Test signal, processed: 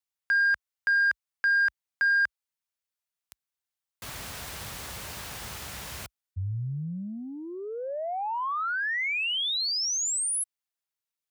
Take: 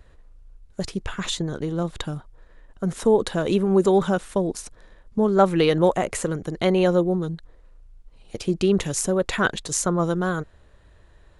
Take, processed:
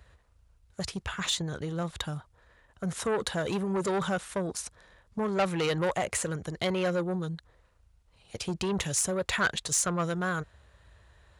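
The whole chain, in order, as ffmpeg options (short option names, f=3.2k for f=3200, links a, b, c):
-af "asoftclip=type=tanh:threshold=-17dB,highpass=f=52:w=0.5412,highpass=f=52:w=1.3066,equalizer=f=300:t=o:w=1.7:g=-10"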